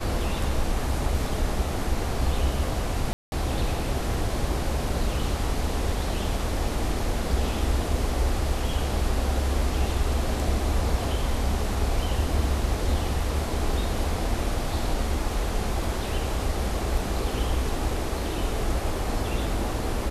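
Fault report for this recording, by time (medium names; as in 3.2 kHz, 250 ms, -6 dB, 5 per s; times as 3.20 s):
3.13–3.32 s: dropout 191 ms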